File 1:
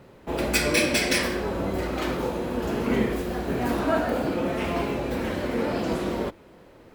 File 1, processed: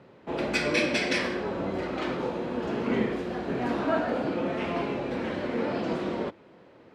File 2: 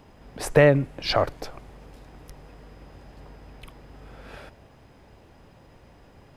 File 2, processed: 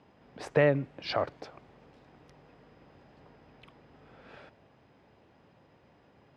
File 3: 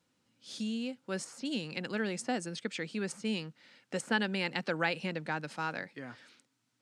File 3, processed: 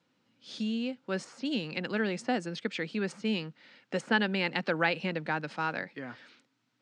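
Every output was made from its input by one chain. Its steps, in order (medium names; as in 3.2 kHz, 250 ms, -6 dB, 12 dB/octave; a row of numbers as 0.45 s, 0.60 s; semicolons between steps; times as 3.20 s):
band-pass 120–4400 Hz; peak normalisation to -12 dBFS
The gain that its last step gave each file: -2.5 dB, -7.5 dB, +3.5 dB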